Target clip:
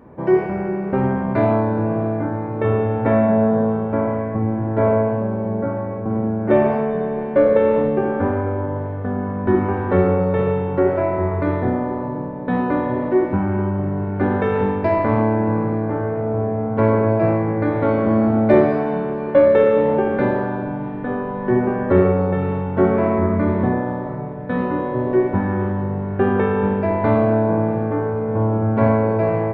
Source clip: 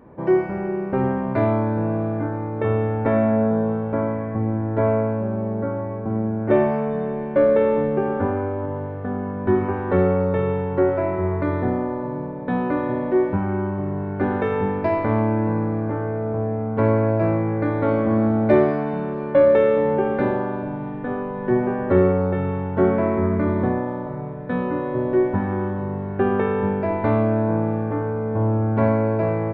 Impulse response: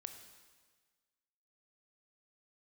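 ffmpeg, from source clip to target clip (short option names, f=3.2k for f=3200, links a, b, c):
-filter_complex "[0:a]flanger=delay=9:depth=6.1:regen=-82:speed=1.9:shape=sinusoidal,asplit=2[a][b];[1:a]atrim=start_sample=2205,afade=t=out:st=0.35:d=0.01,atrim=end_sample=15876[c];[b][c]afir=irnorm=-1:irlink=0,volume=8.5dB[d];[a][d]amix=inputs=2:normalize=0,volume=-1dB"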